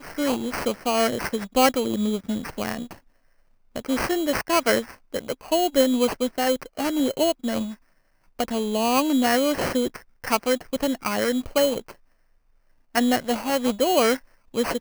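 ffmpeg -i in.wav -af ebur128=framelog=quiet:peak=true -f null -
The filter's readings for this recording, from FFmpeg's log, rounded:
Integrated loudness:
  I:         -23.7 LUFS
  Threshold: -34.2 LUFS
Loudness range:
  LRA:         2.8 LU
  Threshold: -44.6 LUFS
  LRA low:   -26.1 LUFS
  LRA high:  -23.3 LUFS
True peak:
  Peak:       -5.9 dBFS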